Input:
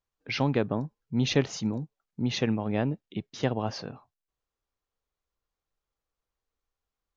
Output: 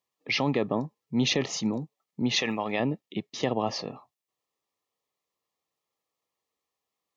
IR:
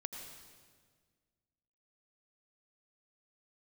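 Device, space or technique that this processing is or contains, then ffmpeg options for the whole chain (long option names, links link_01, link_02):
PA system with an anti-feedback notch: -filter_complex "[0:a]highpass=frequency=230:poles=1,asettb=1/sr,asplit=3[link_01][link_02][link_03];[link_01]atrim=end=2.364[link_04];[link_02]atrim=start=2.36:end=2.8,asetpts=PTS-STARTPTS,afade=type=in:duration=0.004:curve=qsin,afade=type=out:start_time=0.436:duration=0.004:curve=qsin,tiltshelf=frequency=640:gain=-7.5[link_05];[link_03]atrim=start=2.796[link_06];[link_04][link_05]acrossfade=duration=0.004:curve1=hsin:curve2=qsin[link_07];[link_07][link_06]acrossfade=duration=0.004:curve1=qsin:curve2=hsin,highpass=110,asuperstop=centerf=1500:order=12:qfactor=4.6,alimiter=limit=-20dB:level=0:latency=1:release=19,volume=5dB"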